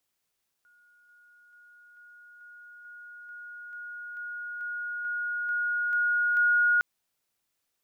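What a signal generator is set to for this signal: level ladder 1440 Hz -58.5 dBFS, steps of 3 dB, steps 14, 0.44 s 0.00 s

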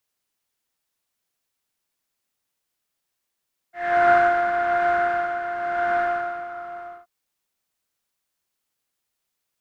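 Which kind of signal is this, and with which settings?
synth patch with tremolo F5, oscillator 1 triangle, oscillator 2 level -17.5 dB, sub -19 dB, noise -6 dB, filter lowpass, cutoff 1300 Hz, Q 9.4, filter envelope 0.5 oct, attack 0.42 s, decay 0.87 s, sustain -8 dB, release 1.11 s, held 2.22 s, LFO 1 Hz, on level 7 dB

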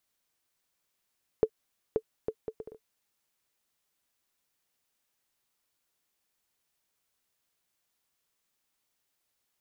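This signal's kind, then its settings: bouncing ball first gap 0.53 s, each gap 0.61, 440 Hz, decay 64 ms -12 dBFS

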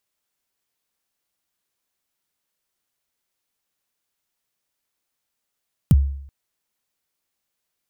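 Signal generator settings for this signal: kick drum length 0.38 s, from 200 Hz, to 69 Hz, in 34 ms, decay 0.67 s, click on, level -7 dB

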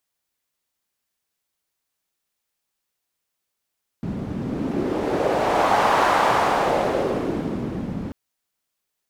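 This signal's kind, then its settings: wind-like swept noise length 4.09 s, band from 190 Hz, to 910 Hz, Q 1.9, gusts 1, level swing 10 dB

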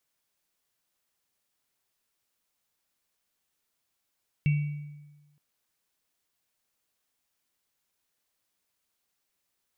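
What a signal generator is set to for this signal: sine partials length 0.92 s, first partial 147 Hz, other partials 2260/2700 Hz, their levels -17/-18 dB, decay 1.21 s, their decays 0.93/0.59 s, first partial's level -19 dB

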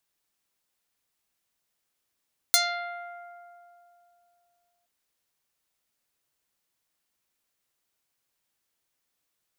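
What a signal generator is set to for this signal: plucked string F5, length 2.32 s, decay 2.94 s, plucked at 0.27, medium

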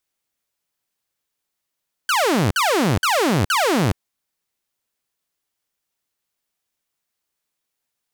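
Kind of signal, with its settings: burst of laser zaps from 1600 Hz, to 82 Hz, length 0.42 s saw, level -13 dB, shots 4, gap 0.05 s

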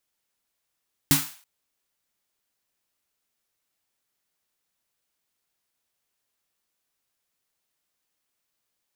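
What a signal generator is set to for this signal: snare drum length 0.33 s, tones 150 Hz, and 280 Hz, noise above 780 Hz, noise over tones 0 dB, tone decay 0.23 s, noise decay 0.44 s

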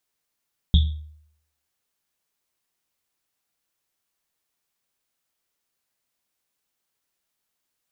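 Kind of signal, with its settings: Risset drum, pitch 76 Hz, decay 0.68 s, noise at 3500 Hz, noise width 450 Hz, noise 15%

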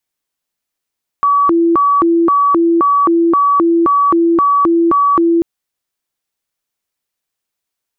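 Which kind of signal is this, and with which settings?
siren hi-lo 336–1140 Hz 1.9/s sine -8 dBFS 4.19 s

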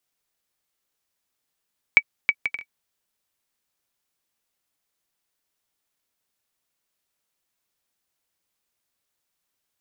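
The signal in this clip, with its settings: bouncing ball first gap 0.32 s, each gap 0.52, 2280 Hz, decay 56 ms -1.5 dBFS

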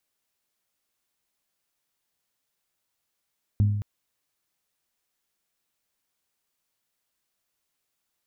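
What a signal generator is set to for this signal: glass hit bell, length 0.22 s, lowest mode 103 Hz, decay 1.04 s, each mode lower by 11 dB, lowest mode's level -15.5 dB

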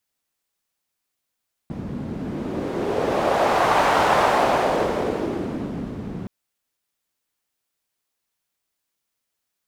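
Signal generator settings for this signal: wind-like swept noise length 4.57 s, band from 190 Hz, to 870 Hz, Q 1.7, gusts 1, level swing 13.5 dB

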